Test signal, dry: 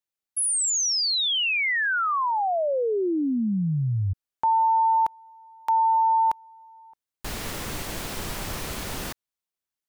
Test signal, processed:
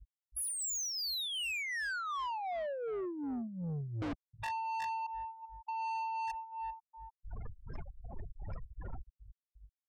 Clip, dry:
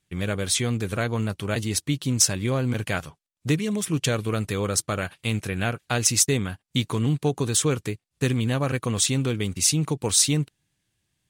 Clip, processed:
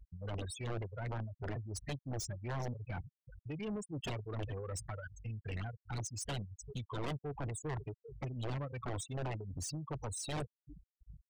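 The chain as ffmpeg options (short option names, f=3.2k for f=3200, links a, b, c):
-filter_complex "[0:a]areverse,acompressor=mode=upward:threshold=-35dB:ratio=4:attack=7.3:release=819:knee=2.83:detection=peak,areverse,equalizer=f=200:w=0.84:g=-8.5,asplit=2[a][b];[b]aecho=0:1:390|780|1170:0.0944|0.0349|0.0129[c];[a][c]amix=inputs=2:normalize=0,aeval=exprs='val(0)+0.00355*(sin(2*PI*50*n/s)+sin(2*PI*2*50*n/s)/2+sin(2*PI*3*50*n/s)/3+sin(2*PI*4*50*n/s)/4+sin(2*PI*5*50*n/s)/5)':c=same,tremolo=f=2.7:d=0.78,acrossover=split=210[d][e];[e]acompressor=threshold=-32dB:ratio=3:attack=0.21:release=95:knee=2.83:detection=peak[f];[d][f]amix=inputs=2:normalize=0,aeval=exprs='(mod(21.1*val(0)+1,2)-1)/21.1':c=same,afftfilt=real='re*gte(hypot(re,im),0.0316)':imag='im*gte(hypot(re,im),0.0316)':win_size=1024:overlap=0.75,asoftclip=type=tanh:threshold=-36dB,volume=1dB"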